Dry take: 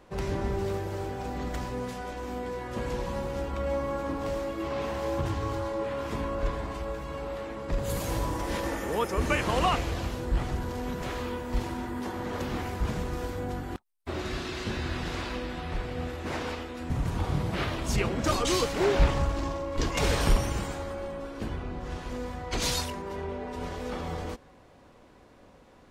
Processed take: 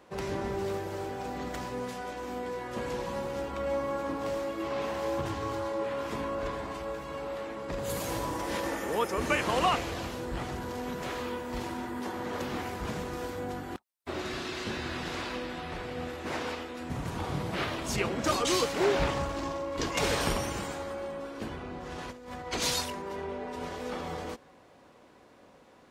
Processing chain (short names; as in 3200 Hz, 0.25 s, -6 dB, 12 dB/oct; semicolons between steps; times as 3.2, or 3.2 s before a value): HPF 210 Hz 6 dB/oct; 21.98–22.47 negative-ratio compressor -41 dBFS, ratio -0.5